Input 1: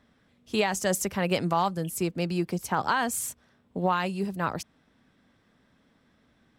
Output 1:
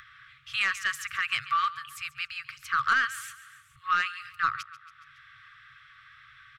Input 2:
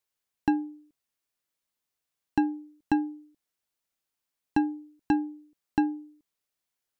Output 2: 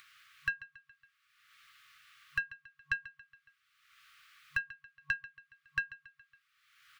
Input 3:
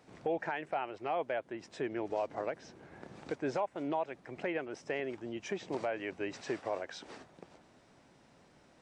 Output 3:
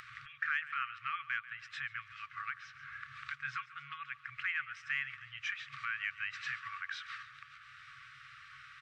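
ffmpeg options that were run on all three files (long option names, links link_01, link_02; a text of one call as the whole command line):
ffmpeg -i in.wav -filter_complex "[0:a]acrossover=split=240 3400:gain=0.1 1 0.0891[link_01][link_02][link_03];[link_01][link_02][link_03]amix=inputs=3:normalize=0,aecho=1:1:139|278|417|556:0.141|0.0593|0.0249|0.0105,asplit=2[link_04][link_05];[link_05]acompressor=mode=upward:threshold=-35dB:ratio=2.5,volume=-2.5dB[link_06];[link_04][link_06]amix=inputs=2:normalize=0,afftfilt=real='re*(1-between(b*sr/4096,140,1100))':imag='im*(1-between(b*sr/4096,140,1100))':win_size=4096:overlap=0.75,aeval=exprs='0.251*(cos(1*acos(clip(val(0)/0.251,-1,1)))-cos(1*PI/2))+0.0178*(cos(2*acos(clip(val(0)/0.251,-1,1)))-cos(2*PI/2))+0.0224*(cos(5*acos(clip(val(0)/0.251,-1,1)))-cos(5*PI/2))':channel_layout=same" out.wav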